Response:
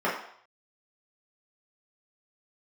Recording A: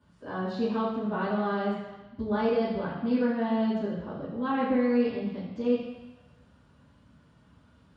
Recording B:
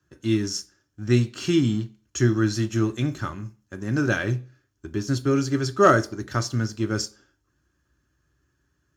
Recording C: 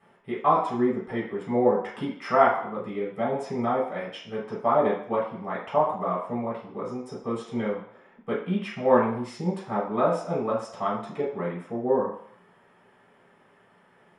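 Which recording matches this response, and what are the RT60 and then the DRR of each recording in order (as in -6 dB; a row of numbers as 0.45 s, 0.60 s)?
C; 1.1 s, 0.40 s, 0.65 s; -11.0 dB, 11.0 dB, -8.0 dB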